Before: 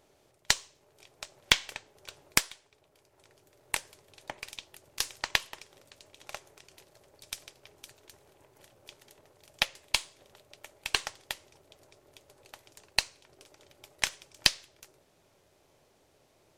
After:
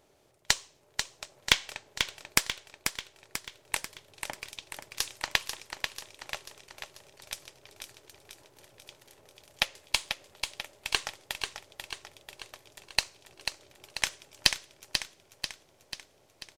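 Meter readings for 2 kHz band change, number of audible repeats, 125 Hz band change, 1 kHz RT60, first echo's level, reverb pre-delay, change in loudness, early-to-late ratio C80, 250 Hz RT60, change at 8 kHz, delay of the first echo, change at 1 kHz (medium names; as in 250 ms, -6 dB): +1.0 dB, 6, +1.0 dB, no reverb, -6.5 dB, no reverb, -2.0 dB, no reverb, no reverb, +1.0 dB, 490 ms, +1.0 dB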